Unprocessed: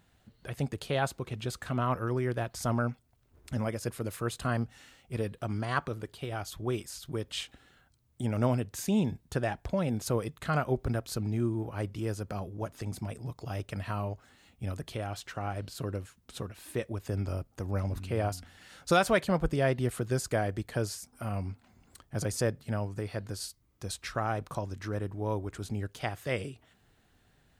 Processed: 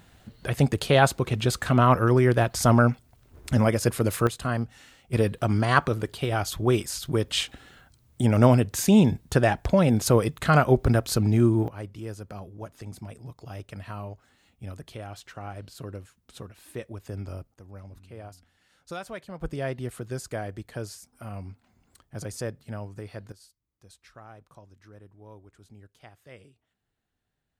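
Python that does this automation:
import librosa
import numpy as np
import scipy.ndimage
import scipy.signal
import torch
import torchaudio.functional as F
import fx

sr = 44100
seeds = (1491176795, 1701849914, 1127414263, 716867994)

y = fx.gain(x, sr, db=fx.steps((0.0, 11.0), (4.27, 3.0), (5.13, 10.0), (11.68, -3.0), (17.54, -12.5), (19.41, -3.5), (23.32, -16.0)))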